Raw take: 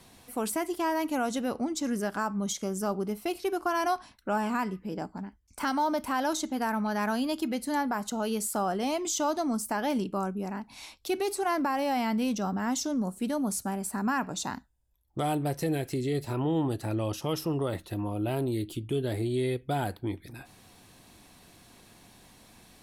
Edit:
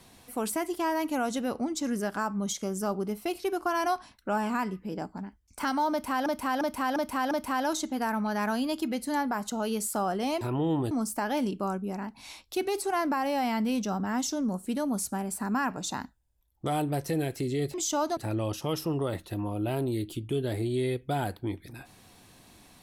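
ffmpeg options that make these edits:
-filter_complex "[0:a]asplit=9[a][b][c][d][e][f][g][h][i];[a]atrim=end=6.262[j];[b]atrim=start=5.908:end=6.262[k];[c]atrim=start=5.908:end=6.262[l];[d]atrim=start=5.908:end=6.262[m];[e]atrim=start=5.908:end=9.012[n];[f]atrim=start=16.268:end=16.772[o];[g]atrim=start=9.438:end=16.272[p];[h]atrim=start=9.008:end=9.442[q];[i]atrim=start=16.768[r];[j][k]acrossfade=d=0.004:c1=hsin:c2=hsin[s];[s][l]acrossfade=d=0.004:c1=hsin:c2=hsin[t];[t][m]acrossfade=d=0.004:c1=hsin:c2=hsin[u];[u][n]acrossfade=d=0.004:c1=hsin:c2=hsin[v];[v][o]acrossfade=d=0.004:c1=hsin:c2=hsin[w];[w][p]acrossfade=d=0.004:c1=hsin:c2=hsin[x];[x][q]acrossfade=d=0.004:c1=hsin:c2=hsin[y];[y][r]acrossfade=d=0.004:c1=hsin:c2=hsin"

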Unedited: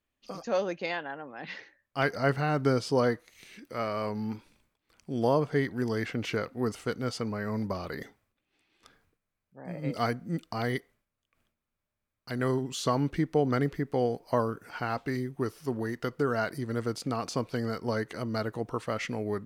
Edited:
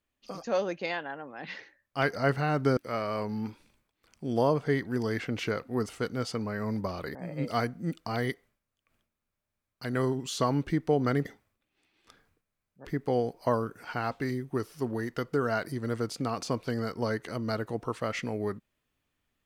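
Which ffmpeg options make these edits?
-filter_complex "[0:a]asplit=5[a][b][c][d][e];[a]atrim=end=2.772[f];[b]atrim=start=3.628:end=8.012[g];[c]atrim=start=9.608:end=13.712[h];[d]atrim=start=8.008:end=9.612[i];[e]atrim=start=13.708[j];[f][g]acrossfade=d=0.004:c1=hsin:c2=hsin[k];[k][h]acrossfade=d=0.004:c1=hsin:c2=hsin[l];[l][i]acrossfade=d=0.004:c1=hsin:c2=hsin[m];[m][j]acrossfade=d=0.004:c1=hsin:c2=hsin"

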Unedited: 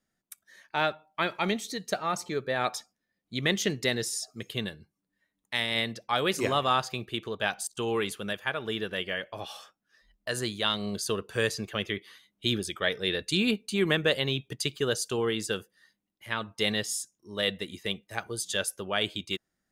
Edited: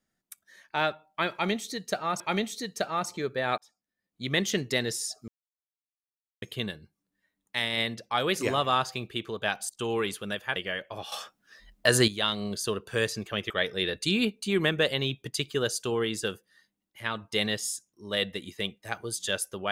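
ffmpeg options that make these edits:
-filter_complex "[0:a]asplit=8[a][b][c][d][e][f][g][h];[a]atrim=end=2.202[i];[b]atrim=start=1.318:end=2.7,asetpts=PTS-STARTPTS,afade=t=out:st=1.378:d=0.004:c=hsin[j];[c]atrim=start=2.7:end=4.4,asetpts=PTS-STARTPTS,afade=t=in:d=0.77,afade=t=out:st=1.696:d=0.004:c=hsin,apad=pad_dur=1.14[k];[d]atrim=start=4.4:end=8.542,asetpts=PTS-STARTPTS,afade=t=in:d=0.004:c=hsin[l];[e]atrim=start=8.978:end=9.542[m];[f]atrim=start=9.538:end=10.502,asetpts=PTS-STARTPTS,volume=10dB[n];[g]atrim=start=10.498:end=11.922[o];[h]atrim=start=12.758[p];[j][k][l]concat=n=3:v=0:a=1[q];[i][q]acrossfade=d=0.004:c1=hsin:c2=hsin[r];[r][m]acrossfade=d=0.004:c1=hsin:c2=hsin[s];[s][n]acrossfade=d=0.004:c1=hsin:c2=hsin[t];[t][o]acrossfade=d=0.004:c1=hsin:c2=hsin[u];[u][p]acrossfade=d=0.004:c1=hsin:c2=hsin"

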